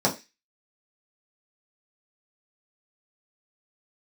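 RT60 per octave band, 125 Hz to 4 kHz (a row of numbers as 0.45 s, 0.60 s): 0.20 s, 0.25 s, 0.25 s, 0.25 s, 0.35 s, 0.40 s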